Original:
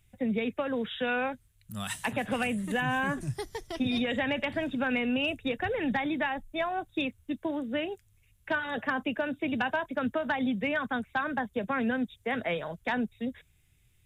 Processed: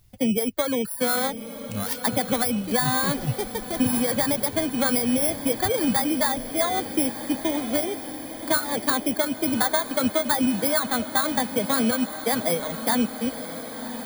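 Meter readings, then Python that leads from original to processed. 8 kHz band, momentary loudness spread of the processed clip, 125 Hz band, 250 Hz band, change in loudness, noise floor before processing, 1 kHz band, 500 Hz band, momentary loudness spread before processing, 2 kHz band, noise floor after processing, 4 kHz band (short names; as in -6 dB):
n/a, 8 LU, +6.5 dB, +6.5 dB, +7.5 dB, -66 dBFS, +5.5 dB, +6.5 dB, 6 LU, +1.0 dB, -37 dBFS, +8.5 dB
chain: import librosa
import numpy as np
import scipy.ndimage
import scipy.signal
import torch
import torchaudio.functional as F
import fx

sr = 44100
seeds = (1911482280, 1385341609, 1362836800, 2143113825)

y = fx.bit_reversed(x, sr, seeds[0], block=16)
y = fx.dereverb_blind(y, sr, rt60_s=1.0)
y = fx.echo_diffused(y, sr, ms=1052, feedback_pct=63, wet_db=-11.5)
y = F.gain(torch.from_numpy(y), 7.5).numpy()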